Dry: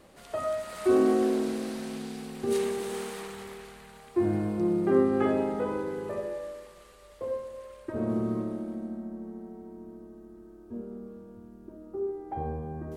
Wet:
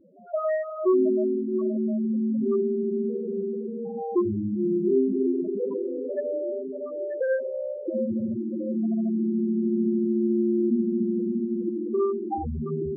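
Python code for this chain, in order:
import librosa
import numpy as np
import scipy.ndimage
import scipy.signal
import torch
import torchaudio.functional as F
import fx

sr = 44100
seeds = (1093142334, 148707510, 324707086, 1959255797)

y = fx.halfwave_hold(x, sr)
y = fx.recorder_agc(y, sr, target_db=-19.5, rise_db_per_s=12.0, max_gain_db=30)
y = fx.highpass(y, sr, hz=79.0, slope=6)
y = fx.echo_diffused(y, sr, ms=699, feedback_pct=58, wet_db=-5.0)
y = fx.spec_topn(y, sr, count=4)
y = fx.end_taper(y, sr, db_per_s=550.0)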